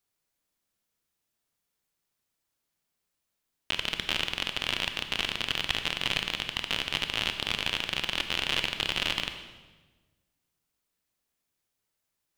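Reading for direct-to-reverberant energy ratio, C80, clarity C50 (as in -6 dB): 7.0 dB, 10.0 dB, 8.0 dB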